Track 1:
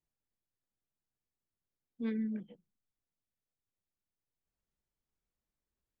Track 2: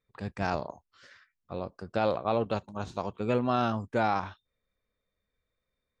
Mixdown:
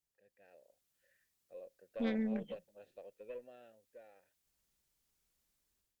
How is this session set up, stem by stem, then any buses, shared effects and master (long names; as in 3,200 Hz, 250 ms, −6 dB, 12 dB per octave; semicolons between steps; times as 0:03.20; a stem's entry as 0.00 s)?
−2.0 dB, 0.00 s, no send, high-shelf EQ 2,400 Hz +11 dB; automatic gain control gain up to 10.5 dB
0:00.63 −16.5 dB → 0:01.21 −4.5 dB → 0:03.12 −4.5 dB → 0:03.87 −16 dB, 0.00 s, no send, formant filter e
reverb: not used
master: tube saturation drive 20 dB, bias 0.75; downward compressor 2 to 1, threshold −35 dBFS, peak gain reduction 6.5 dB